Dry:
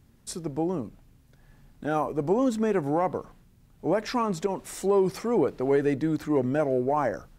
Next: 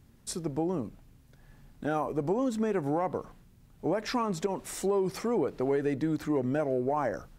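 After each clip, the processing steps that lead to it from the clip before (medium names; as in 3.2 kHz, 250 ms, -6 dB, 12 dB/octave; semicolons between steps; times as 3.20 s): compression 3:1, threshold -26 dBFS, peak gain reduction 6.5 dB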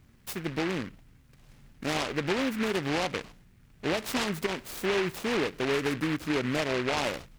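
delay time shaken by noise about 1.7 kHz, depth 0.2 ms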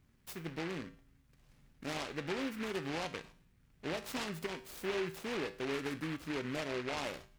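feedback comb 55 Hz, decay 0.43 s, harmonics odd, mix 60%; trim -3.5 dB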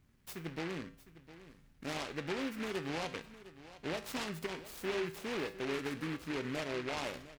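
delay 707 ms -16 dB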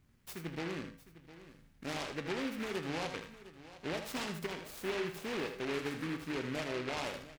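delay 79 ms -8.5 dB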